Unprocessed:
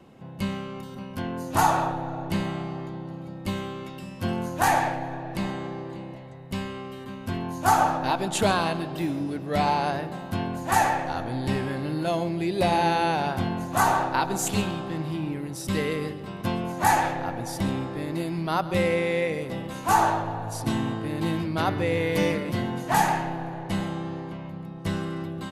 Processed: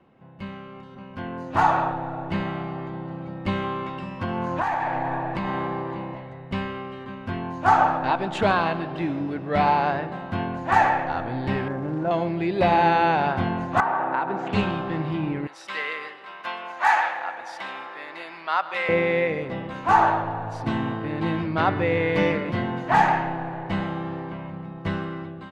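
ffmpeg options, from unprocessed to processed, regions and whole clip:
-filter_complex "[0:a]asettb=1/sr,asplit=3[s0][s1][s2];[s0]atrim=end=3.644[s3];[s1]atrim=start=3.64:end=6.21,asetpts=PTS-STARTPTS,afade=t=in:d=0.004:c=qsin,afade=t=out:st=2.566:d=0.004:c=qsin,equalizer=f=1000:w=3.3:g=6,acompressor=threshold=0.0447:ratio=16:attack=3.2:release=140:knee=1:detection=peak[s4];[s2]atrim=start=6.206[s5];[s3][s4]acrossfade=d=0.004:c1=hsin:c2=qsin[s6];[s6][s5]acrossfade=d=0.004:c1=qsin:c2=hsin,asettb=1/sr,asplit=3[s7][s8][s9];[s7]atrim=end=11.684[s10];[s8]atrim=start=11.68:end=12.11,asetpts=PTS-STARTPTS,afade=t=in:d=0.004:c=qsin,afade=t=out:st=0.426:d=0.004:c=qsin,lowpass=1200,acrusher=bits=7:mode=log:mix=0:aa=0.000001[s11];[s9]atrim=start=12.106[s12];[s10][s11]acrossfade=d=0.004:c1=hsin:c2=qsin[s13];[s13][s12]acrossfade=d=0.004:c1=qsin:c2=hsin,asettb=1/sr,asplit=3[s14][s15][s16];[s14]atrim=end=13.804[s17];[s15]atrim=start=13.8:end=14.53,asetpts=PTS-STARTPTS,afade=t=in:d=0.004:c=qsin,afade=t=out:st=0.726:d=0.004:c=qsin,highpass=200,lowpass=2100,acompressor=threshold=0.0562:ratio=5:attack=3.2:release=140:knee=1:detection=peak[s18];[s16]atrim=start=14.526[s19];[s17][s18]acrossfade=d=0.004:c1=hsin:c2=qsin[s20];[s20][s19]acrossfade=d=0.004:c1=qsin:c2=hsin,asettb=1/sr,asplit=3[s21][s22][s23];[s21]atrim=end=15.474[s24];[s22]atrim=start=15.47:end=18.89,asetpts=PTS-STARTPTS,afade=t=in:d=0.004:c=qsin,afade=t=out:st=3.416:d=0.004:c=qsin,highpass=1000,asplit=6[s25][s26][s27][s28][s29][s30];[s26]adelay=145,afreqshift=-30,volume=0.0794[s31];[s27]adelay=290,afreqshift=-60,volume=0.0479[s32];[s28]adelay=435,afreqshift=-90,volume=0.0285[s33];[s29]adelay=580,afreqshift=-120,volume=0.0172[s34];[s30]adelay=725,afreqshift=-150,volume=0.0104[s35];[s25][s31][s32][s33][s34][s35]amix=inputs=6:normalize=0,atrim=end_sample=150822[s36];[s23]atrim=start=18.886[s37];[s24][s36]acrossfade=d=0.004:c1=hsin:c2=qsin[s38];[s38][s37]acrossfade=d=0.004:c1=qsin:c2=hsin,lowpass=2000,tiltshelf=f=970:g=-4,dynaudnorm=f=460:g=5:m=3.76,volume=0.631"

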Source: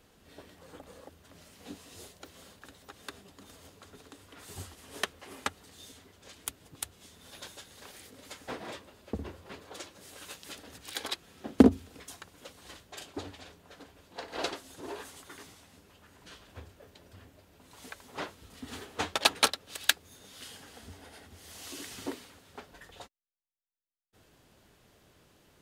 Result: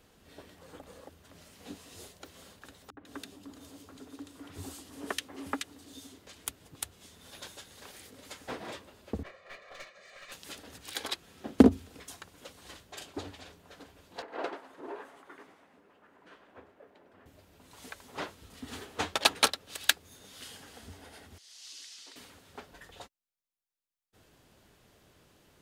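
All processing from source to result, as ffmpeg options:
-filter_complex "[0:a]asettb=1/sr,asplit=3[s0][s1][s2];[s0]atrim=end=2.904[s3];[s1]atrim=start=2.9:end=6.27,asetpts=PTS-STARTPTS,afade=t=in:d=0.004:c=qsin,afade=t=out:st=3.366:d=0.004:c=qsin,highpass=54,equalizer=f=280:w=3.9:g=14,acrossover=split=200|2000[s4][s5][s6];[s5]adelay=70[s7];[s6]adelay=150[s8];[s4][s7][s8]amix=inputs=3:normalize=0,atrim=end_sample=148617[s9];[s2]atrim=start=6.266[s10];[s3][s9]acrossfade=d=0.004:c1=hsin:c2=qsin[s11];[s11][s10]acrossfade=d=0.004:c1=qsin:c2=hsin,asettb=1/sr,asplit=3[s12][s13][s14];[s12]atrim=end=9.234[s15];[s13]atrim=start=9.23:end=10.32,asetpts=PTS-STARTPTS,afade=t=in:d=0.004:c=qsin,afade=t=out:st=1.086:d=0.004:c=qsin,highpass=420,equalizer=f=440:t=q:w=4:g=-8,equalizer=f=930:t=q:w=4:g=-8,equalizer=f=2100:t=q:w=4:g=9,equalizer=f=3200:t=q:w=4:g=-9,equalizer=f=5200:t=q:w=4:g=-9,lowpass=f=5300:w=0.5412,lowpass=f=5300:w=1.3066,aecho=1:1:1.7:0.91,atrim=end_sample=48069,aeval=exprs='clip(val(0),-1,0.00316)':c=same[s16];[s14]atrim=start=10.316[s17];[s15][s16]acrossfade=d=0.004:c1=hsin:c2=qsin[s18];[s18][s17]acrossfade=d=0.004:c1=qsin:c2=hsin,asettb=1/sr,asplit=3[s19][s20][s21];[s19]atrim=end=14.224[s22];[s20]atrim=start=14.22:end=17.26,asetpts=PTS-STARTPTS,afade=t=in:d=0.004:c=qsin,afade=t=out:st=3.036:d=0.004:c=qsin,acrossover=split=210 2200:gain=0.0891 1 0.112[s23][s24][s25];[s23][s24][s25]amix=inputs=3:normalize=0,asplit=6[s26][s27][s28][s29][s30][s31];[s27]adelay=101,afreqshift=140,volume=0.15[s32];[s28]adelay=202,afreqshift=280,volume=0.0804[s33];[s29]adelay=303,afreqshift=420,volume=0.0437[s34];[s30]adelay=404,afreqshift=560,volume=0.0234[s35];[s31]adelay=505,afreqshift=700,volume=0.0127[s36];[s26][s32][s33][s34][s35][s36]amix=inputs=6:normalize=0,atrim=end_sample=134064[s37];[s21]atrim=start=17.256[s38];[s22][s37]acrossfade=d=0.004:c1=hsin:c2=qsin[s39];[s39][s38]acrossfade=d=0.004:c1=qsin:c2=hsin,asettb=1/sr,asplit=3[s40][s41][s42];[s40]atrim=end=21.384[s43];[s41]atrim=start=21.38:end=22.16,asetpts=PTS-STARTPTS,afade=t=in:d=0.004:c=qsin,afade=t=out:st=0.776:d=0.004:c=qsin,lowpass=f=5000:t=q:w=1.6,aderivative[s44];[s42]atrim=start=22.156[s45];[s43][s44]acrossfade=d=0.004:c1=hsin:c2=qsin[s46];[s46][s45]acrossfade=d=0.004:c1=qsin:c2=hsin"

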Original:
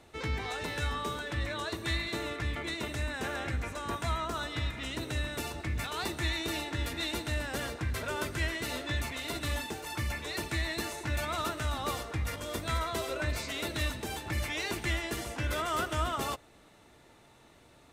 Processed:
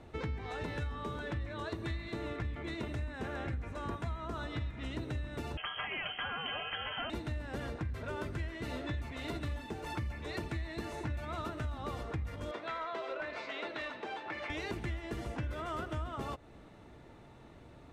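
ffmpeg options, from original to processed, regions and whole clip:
-filter_complex "[0:a]asettb=1/sr,asplit=3[s0][s1][s2];[s0]atrim=end=5.574[s3];[s1]atrim=start=5.57:end=7.1,asetpts=PTS-STARTPTS,afade=t=in:d=0.004:c=qsin,afade=t=out:st=1.526:d=0.004:c=qsin,highpass=f=150:w=0.5412,highpass=f=150:w=1.3066,acontrast=64,lowpass=f=2900:t=q:w=0.5098,lowpass=f=2900:t=q:w=0.6013,lowpass=f=2900:t=q:w=0.9,lowpass=f=2900:t=q:w=2.563,afreqshift=-3400[s4];[s2]atrim=start=7.096[s5];[s3][s4]acrossfade=d=0.004:c1=hsin:c2=qsin[s6];[s6][s5]acrossfade=d=0.004:c1=qsin:c2=hsin,asettb=1/sr,asplit=3[s7][s8][s9];[s7]atrim=end=12.514[s10];[s8]atrim=start=12.51:end=14.5,asetpts=PTS-STARTPTS,afade=t=in:d=0.004:c=qsin,afade=t=out:st=1.986:d=0.004:c=qsin,highpass=560,lowpass=3500,asoftclip=type=hard:threshold=0.0355[s11];[s9]atrim=start=14.496[s12];[s10][s11]acrossfade=d=0.004:c1=hsin:c2=qsin[s13];[s13][s12]acrossfade=d=0.004:c1=qsin:c2=hsin,lowpass=f=2000:p=1,lowshelf=f=330:g=7,acompressor=threshold=0.0141:ratio=6,volume=1.19"

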